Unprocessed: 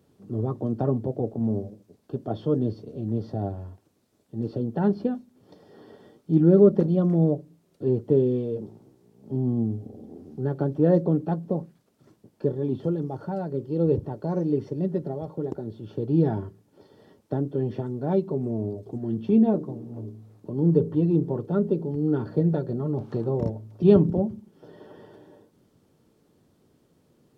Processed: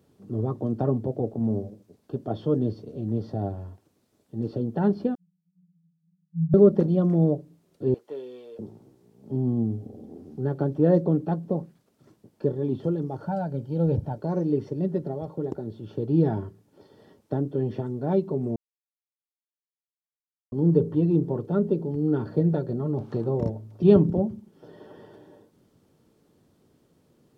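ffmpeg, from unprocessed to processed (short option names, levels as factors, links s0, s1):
-filter_complex "[0:a]asettb=1/sr,asplit=3[s0][s1][s2];[s0]atrim=end=5.154[s3];[s1]atrim=start=5.15:end=6.54,asetpts=PTS-STARTPTS,afade=t=in:d=0.004:c=qsin,afade=t=out:st=1.386:d=0.004:c=qsin,asuperpass=centerf=170:order=20:qfactor=5.3[s4];[s2]atrim=start=6.536[s5];[s3][s4]acrossfade=d=0.004:c1=hsin:c2=qsin[s6];[s6][s5]acrossfade=d=0.004:c1=qsin:c2=hsin,asettb=1/sr,asplit=3[s7][s8][s9];[s7]atrim=end=7.944[s10];[s8]atrim=start=7.94:end=8.59,asetpts=PTS-STARTPTS,afade=t=in:d=0.004:c=qsin,afade=t=out:st=0.646:d=0.004:c=qsin,highpass=970[s11];[s9]atrim=start=8.586[s12];[s10][s11]acrossfade=d=0.004:c1=hsin:c2=qsin[s13];[s13][s12]acrossfade=d=0.004:c1=qsin:c2=hsin,asettb=1/sr,asplit=3[s14][s15][s16];[s14]atrim=end=13.264[s17];[s15]atrim=start=13.26:end=14.18,asetpts=PTS-STARTPTS,afade=t=in:d=0.004:c=qsin,afade=t=out:st=0.916:d=0.004:c=qsin,aecho=1:1:1.3:0.65,atrim=end_sample=40572[s18];[s16]atrim=start=14.176[s19];[s17][s18]acrossfade=d=0.004:c1=hsin:c2=qsin[s20];[s20][s19]acrossfade=d=0.004:c1=qsin:c2=hsin,asplit=3[s21][s22][s23];[s21]atrim=end=18.56,asetpts=PTS-STARTPTS,afade=t=out:st=18.556:d=0.004:c=hsin[s24];[s22]atrim=start=18.56:end=20.52,asetpts=PTS-STARTPTS,volume=0[s25];[s23]atrim=start=20.52,asetpts=PTS-STARTPTS,afade=t=in:d=0.004:c=hsin[s26];[s24][s25][s26]concat=n=3:v=0:a=1"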